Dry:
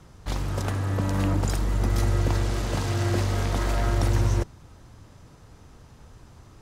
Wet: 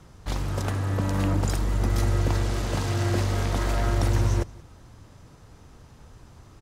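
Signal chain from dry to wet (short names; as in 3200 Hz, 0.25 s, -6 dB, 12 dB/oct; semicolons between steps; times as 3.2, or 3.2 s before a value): echo 0.177 s -23 dB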